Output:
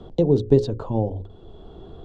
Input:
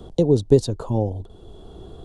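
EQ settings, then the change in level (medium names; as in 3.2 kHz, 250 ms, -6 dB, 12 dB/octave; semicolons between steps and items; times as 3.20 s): low-pass 3.4 kHz 12 dB/octave; hum notches 50/100 Hz; hum notches 60/120/180/240/300/360/420/480/540 Hz; 0.0 dB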